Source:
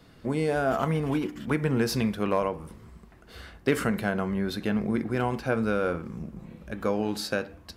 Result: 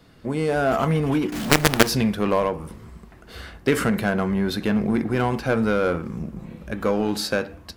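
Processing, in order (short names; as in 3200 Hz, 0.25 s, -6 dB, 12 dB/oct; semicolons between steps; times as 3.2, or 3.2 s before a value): AGC gain up to 5 dB; in parallel at -10 dB: wavefolder -19.5 dBFS; 1.32–1.89 on the sum: companded quantiser 2-bit; gain -1 dB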